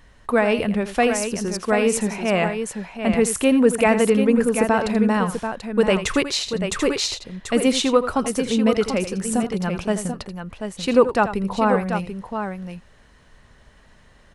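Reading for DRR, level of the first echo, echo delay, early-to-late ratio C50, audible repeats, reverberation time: no reverb audible, −12.0 dB, 83 ms, no reverb audible, 2, no reverb audible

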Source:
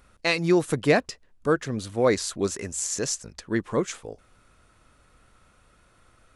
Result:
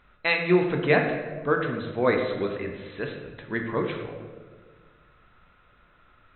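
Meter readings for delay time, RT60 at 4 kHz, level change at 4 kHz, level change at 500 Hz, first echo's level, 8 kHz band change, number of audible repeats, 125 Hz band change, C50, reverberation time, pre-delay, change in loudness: no echo audible, 0.90 s, −4.0 dB, 0.0 dB, no echo audible, below −40 dB, no echo audible, −0.5 dB, 5.0 dB, 1.5 s, 3 ms, −0.5 dB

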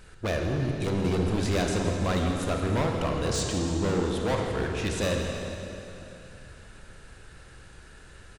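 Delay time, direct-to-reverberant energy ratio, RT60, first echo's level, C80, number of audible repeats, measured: 164 ms, 0.5 dB, 2.9 s, −12.5 dB, 2.0 dB, 1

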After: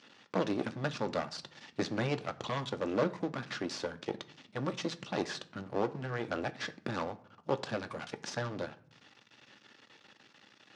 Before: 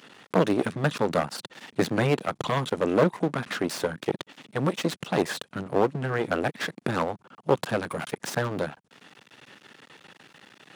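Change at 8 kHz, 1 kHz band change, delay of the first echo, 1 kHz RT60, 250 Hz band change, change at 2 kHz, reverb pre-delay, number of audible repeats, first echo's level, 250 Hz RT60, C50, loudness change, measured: −9.0 dB, −9.0 dB, no echo audible, 0.50 s, −9.0 dB, −9.0 dB, 3 ms, no echo audible, no echo audible, 0.90 s, 18.5 dB, −9.0 dB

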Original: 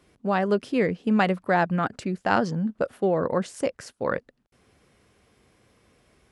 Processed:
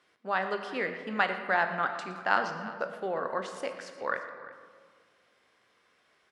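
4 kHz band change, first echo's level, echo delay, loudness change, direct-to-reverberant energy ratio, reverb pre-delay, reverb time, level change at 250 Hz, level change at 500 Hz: −2.5 dB, −17.0 dB, 116 ms, −6.0 dB, 6.0 dB, 19 ms, 1.8 s, −15.5 dB, −8.5 dB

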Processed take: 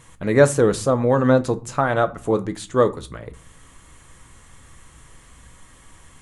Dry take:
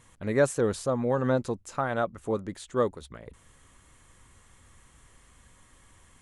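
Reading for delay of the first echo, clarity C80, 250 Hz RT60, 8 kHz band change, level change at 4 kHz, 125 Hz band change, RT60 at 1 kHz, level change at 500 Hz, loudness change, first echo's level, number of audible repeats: no echo audible, 24.0 dB, 0.80 s, +9.0 dB, +9.0 dB, +9.5 dB, 0.45 s, +9.0 dB, +9.0 dB, no echo audible, no echo audible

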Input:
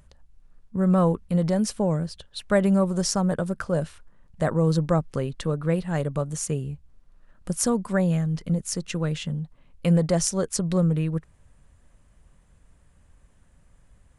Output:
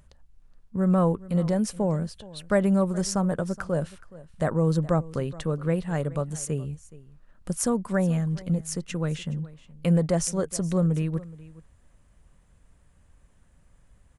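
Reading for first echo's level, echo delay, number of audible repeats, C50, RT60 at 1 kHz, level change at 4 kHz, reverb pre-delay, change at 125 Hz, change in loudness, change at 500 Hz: −19.5 dB, 421 ms, 1, no reverb audible, no reverb audible, −5.0 dB, no reverb audible, −1.5 dB, −1.5 dB, −1.5 dB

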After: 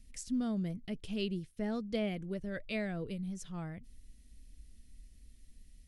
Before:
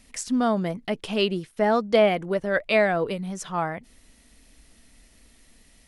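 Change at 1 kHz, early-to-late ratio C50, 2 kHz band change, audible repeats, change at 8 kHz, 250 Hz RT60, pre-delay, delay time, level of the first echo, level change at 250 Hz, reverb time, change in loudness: −23.0 dB, no reverb audible, −17.5 dB, no echo audible, −12.0 dB, no reverb audible, no reverb audible, no echo audible, no echo audible, −8.5 dB, no reverb audible, −13.5 dB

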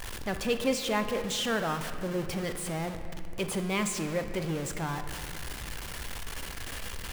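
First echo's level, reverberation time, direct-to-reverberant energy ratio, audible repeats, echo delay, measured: no echo audible, 2.5 s, 7.0 dB, no echo audible, no echo audible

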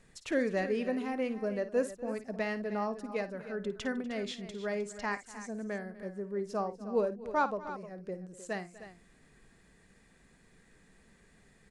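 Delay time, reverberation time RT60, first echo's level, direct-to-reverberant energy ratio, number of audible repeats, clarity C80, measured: 54 ms, no reverb audible, −13.0 dB, no reverb audible, 3, no reverb audible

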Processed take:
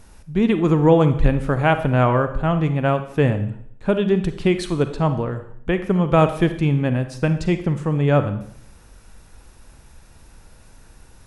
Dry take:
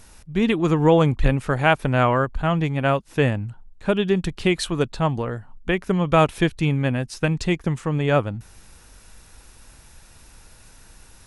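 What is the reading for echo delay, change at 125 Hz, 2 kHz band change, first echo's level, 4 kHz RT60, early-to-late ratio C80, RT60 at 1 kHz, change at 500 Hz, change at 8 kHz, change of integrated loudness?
no echo audible, +3.0 dB, −2.0 dB, no echo audible, 0.60 s, 14.0 dB, 0.60 s, +2.0 dB, −5.0 dB, +2.0 dB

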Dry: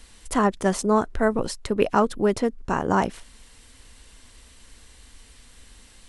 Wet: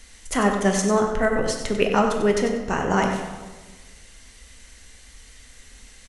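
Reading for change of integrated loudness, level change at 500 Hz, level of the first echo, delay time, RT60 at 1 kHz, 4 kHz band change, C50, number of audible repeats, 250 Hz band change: +1.5 dB, +1.5 dB, −8.5 dB, 95 ms, 1.3 s, +5.0 dB, 4.0 dB, 1, +1.0 dB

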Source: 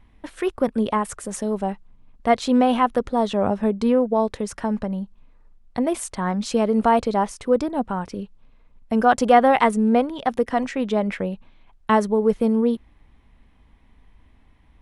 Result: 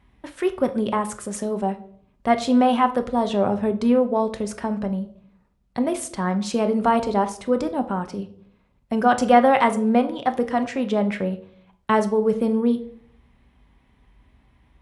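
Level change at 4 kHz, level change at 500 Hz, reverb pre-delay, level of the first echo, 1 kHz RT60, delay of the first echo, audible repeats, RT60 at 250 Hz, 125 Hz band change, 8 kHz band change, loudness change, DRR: −0.5 dB, −0.5 dB, 5 ms, no echo audible, 0.50 s, no echo audible, no echo audible, 0.85 s, +0.5 dB, −0.5 dB, −0.5 dB, 7.5 dB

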